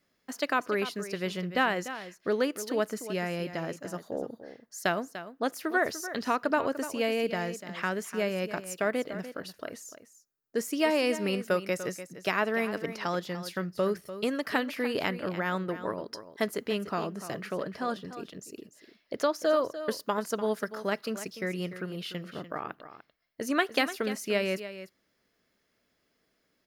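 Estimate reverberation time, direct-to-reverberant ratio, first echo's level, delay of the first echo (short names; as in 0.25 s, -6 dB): none, none, -12.5 dB, 0.295 s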